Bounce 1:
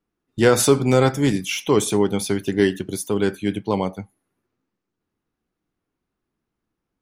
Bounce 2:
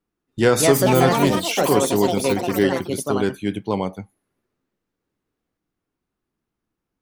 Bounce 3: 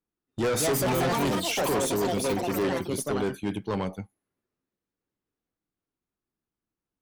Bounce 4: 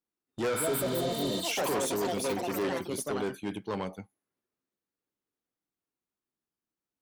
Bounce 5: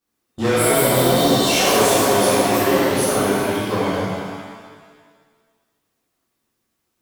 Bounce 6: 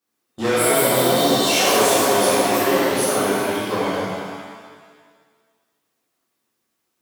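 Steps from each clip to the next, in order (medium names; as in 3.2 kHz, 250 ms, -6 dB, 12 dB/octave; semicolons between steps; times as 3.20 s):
ever faster or slower copies 313 ms, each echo +5 st, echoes 3; trim -1 dB
valve stage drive 20 dB, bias 0.2; gate -36 dBFS, range -7 dB; trim -2 dB
spectral replace 0.57–1.38 s, 730–7400 Hz both; bass shelf 130 Hz -10.5 dB; trim -3 dB
in parallel at +3 dB: peak limiter -32 dBFS, peak gain reduction 11.5 dB; on the sum: pitch-shifted reverb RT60 1.6 s, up +7 st, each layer -8 dB, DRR -11 dB; trim -1 dB
high-pass 240 Hz 6 dB/octave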